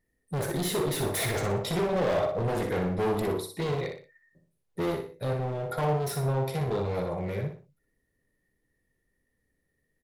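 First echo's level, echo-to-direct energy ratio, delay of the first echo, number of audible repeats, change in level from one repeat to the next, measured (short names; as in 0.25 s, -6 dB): -6.0 dB, -5.5 dB, 60 ms, 3, -9.0 dB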